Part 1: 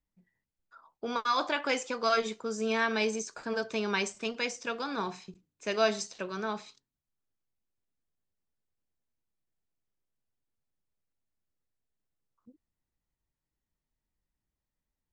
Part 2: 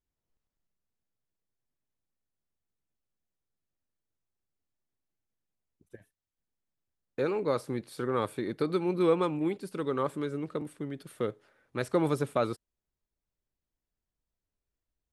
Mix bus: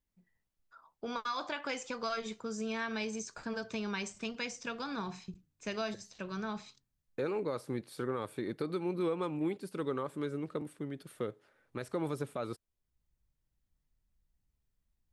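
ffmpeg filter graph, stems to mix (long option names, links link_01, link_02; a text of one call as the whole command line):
ffmpeg -i stem1.wav -i stem2.wav -filter_complex "[0:a]asubboost=boost=4:cutoff=190,acompressor=threshold=-32dB:ratio=3,volume=-2.5dB[link_01];[1:a]alimiter=limit=-22dB:level=0:latency=1:release=153,volume=-3dB,asplit=2[link_02][link_03];[link_03]apad=whole_len=667091[link_04];[link_01][link_04]sidechaincompress=threshold=-56dB:ratio=4:attack=10:release=334[link_05];[link_05][link_02]amix=inputs=2:normalize=0" out.wav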